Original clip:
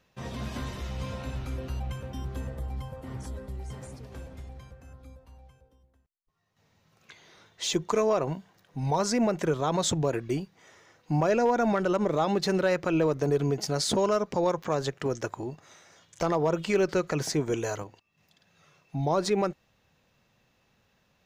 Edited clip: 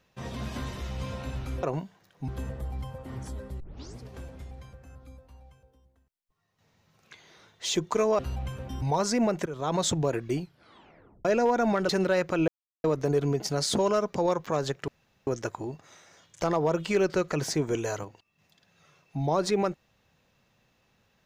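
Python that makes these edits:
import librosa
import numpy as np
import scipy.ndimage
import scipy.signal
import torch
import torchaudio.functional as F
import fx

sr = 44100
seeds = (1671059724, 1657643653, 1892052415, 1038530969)

y = fx.edit(x, sr, fx.swap(start_s=1.63, length_s=0.63, other_s=8.17, other_length_s=0.65),
    fx.tape_start(start_s=3.58, length_s=0.4),
    fx.fade_in_from(start_s=9.46, length_s=0.28, floor_db=-16.5),
    fx.tape_stop(start_s=10.37, length_s=0.88),
    fx.cut(start_s=11.89, length_s=0.54),
    fx.insert_silence(at_s=13.02, length_s=0.36),
    fx.insert_room_tone(at_s=15.06, length_s=0.39), tone=tone)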